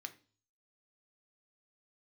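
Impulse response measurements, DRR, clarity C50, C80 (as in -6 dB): 6.5 dB, 16.0 dB, 21.5 dB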